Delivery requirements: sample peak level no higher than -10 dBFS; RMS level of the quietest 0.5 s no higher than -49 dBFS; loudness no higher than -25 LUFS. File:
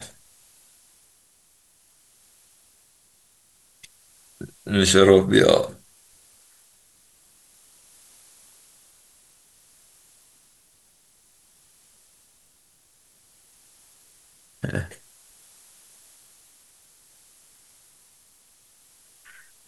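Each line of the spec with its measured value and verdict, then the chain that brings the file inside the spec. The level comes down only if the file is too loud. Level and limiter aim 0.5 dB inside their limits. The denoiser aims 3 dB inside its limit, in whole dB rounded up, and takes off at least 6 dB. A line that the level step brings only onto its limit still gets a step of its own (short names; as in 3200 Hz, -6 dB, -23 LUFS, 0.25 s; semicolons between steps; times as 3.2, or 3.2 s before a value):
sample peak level -2.0 dBFS: fail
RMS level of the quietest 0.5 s -60 dBFS: OK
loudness -18.5 LUFS: fail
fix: gain -7 dB; limiter -10.5 dBFS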